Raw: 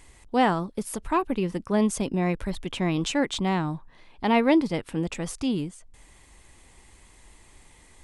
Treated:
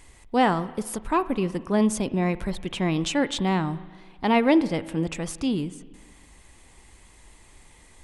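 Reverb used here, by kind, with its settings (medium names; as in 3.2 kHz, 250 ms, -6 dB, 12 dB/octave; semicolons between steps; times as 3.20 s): spring tank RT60 1.5 s, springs 37/55 ms, chirp 60 ms, DRR 15.5 dB; trim +1 dB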